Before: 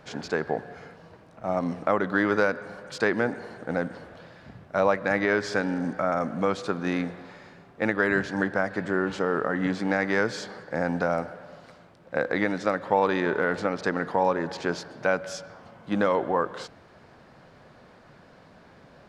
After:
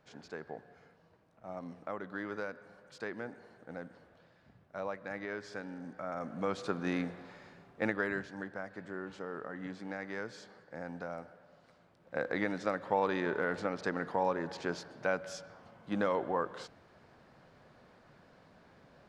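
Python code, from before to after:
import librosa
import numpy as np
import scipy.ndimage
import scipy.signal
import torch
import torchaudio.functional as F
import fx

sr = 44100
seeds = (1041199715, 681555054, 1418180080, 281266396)

y = fx.gain(x, sr, db=fx.line((5.89, -16.5), (6.67, -6.5), (7.84, -6.5), (8.35, -16.0), (11.5, -16.0), (12.26, -8.0)))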